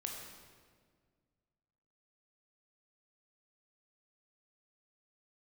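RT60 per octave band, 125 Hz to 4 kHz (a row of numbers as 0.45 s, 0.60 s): 2.4 s, 2.3 s, 2.0 s, 1.6 s, 1.4 s, 1.3 s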